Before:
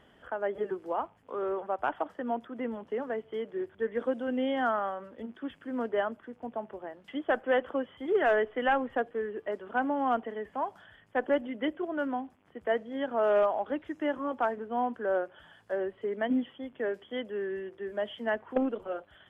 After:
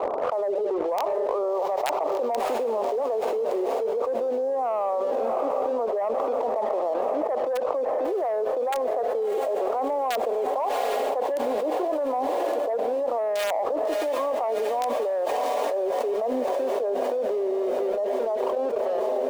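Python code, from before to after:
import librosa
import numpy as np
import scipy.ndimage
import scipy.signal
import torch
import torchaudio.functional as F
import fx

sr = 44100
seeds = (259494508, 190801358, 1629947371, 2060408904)

p1 = fx.fade_out_tail(x, sr, length_s=2.69)
p2 = scipy.signal.sosfilt(scipy.signal.butter(12, 1200.0, 'lowpass', fs=sr, output='sos'), p1)
p3 = fx.rider(p2, sr, range_db=5, speed_s=0.5)
p4 = p2 + (p3 * librosa.db_to_amplitude(2.0))
p5 = fx.transient(p4, sr, attack_db=-6, sustain_db=4)
p6 = (np.mod(10.0 ** (14.0 / 20.0) * p5 + 1.0, 2.0) - 1.0) / 10.0 ** (14.0 / 20.0)
p7 = fx.ladder_highpass(p6, sr, hz=440.0, resonance_pct=45)
p8 = fx.leveller(p7, sr, passes=1)
p9 = fx.echo_diffused(p8, sr, ms=671, feedback_pct=66, wet_db=-15.5)
p10 = fx.env_flatten(p9, sr, amount_pct=100)
y = p10 * librosa.db_to_amplitude(-5.5)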